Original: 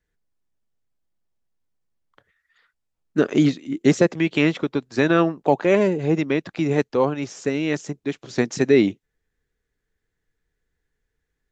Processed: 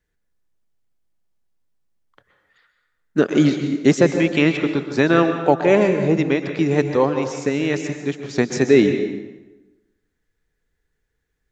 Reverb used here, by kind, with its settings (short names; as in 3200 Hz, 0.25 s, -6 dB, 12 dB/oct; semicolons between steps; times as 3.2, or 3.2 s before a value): plate-style reverb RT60 1.1 s, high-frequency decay 0.75×, pre-delay 0.11 s, DRR 6.5 dB; gain +2 dB